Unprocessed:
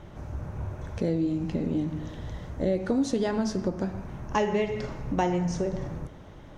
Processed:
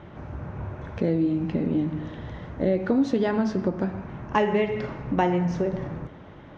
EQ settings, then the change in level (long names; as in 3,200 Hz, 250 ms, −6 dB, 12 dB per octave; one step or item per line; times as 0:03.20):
high-pass filter 160 Hz 6 dB per octave
low-pass filter 2,700 Hz 12 dB per octave
parametric band 610 Hz −3 dB 1.7 octaves
+6.0 dB